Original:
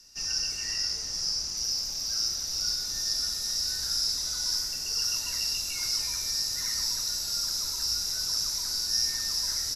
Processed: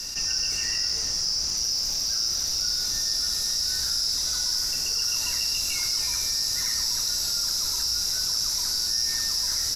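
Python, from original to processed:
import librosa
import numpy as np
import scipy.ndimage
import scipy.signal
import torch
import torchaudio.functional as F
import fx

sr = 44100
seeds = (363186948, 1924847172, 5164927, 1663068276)

y = fx.mod_noise(x, sr, seeds[0], snr_db=30)
y = fx.env_flatten(y, sr, amount_pct=70)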